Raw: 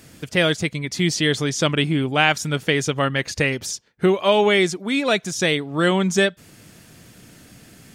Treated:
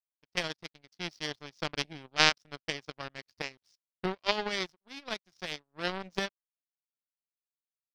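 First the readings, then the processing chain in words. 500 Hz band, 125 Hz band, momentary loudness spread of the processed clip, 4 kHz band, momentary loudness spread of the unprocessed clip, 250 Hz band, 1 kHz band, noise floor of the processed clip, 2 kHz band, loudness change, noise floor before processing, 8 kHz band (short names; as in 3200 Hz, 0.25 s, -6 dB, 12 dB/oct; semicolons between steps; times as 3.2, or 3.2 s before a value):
-18.5 dB, -21.5 dB, 16 LU, -9.5 dB, 5 LU, -20.5 dB, -12.0 dB, under -85 dBFS, -12.5 dB, -13.5 dB, -49 dBFS, -15.5 dB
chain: power-law curve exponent 3; resonant high shelf 6200 Hz -6 dB, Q 3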